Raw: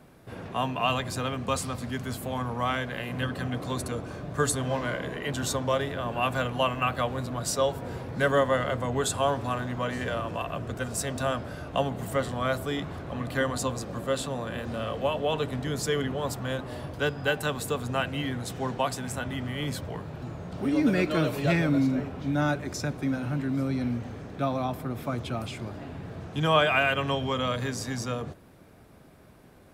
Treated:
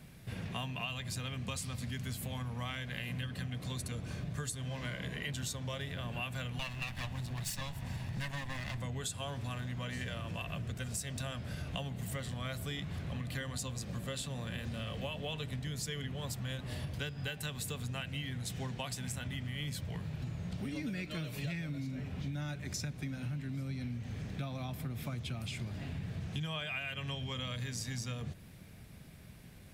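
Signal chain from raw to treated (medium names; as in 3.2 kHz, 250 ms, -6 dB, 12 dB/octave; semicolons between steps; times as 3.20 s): 6.59–8.82 s: comb filter that takes the minimum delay 1.1 ms; high-order bell 620 Hz -11.5 dB 2.8 oct; compression 12:1, threshold -39 dBFS, peak gain reduction 16.5 dB; trim +3.5 dB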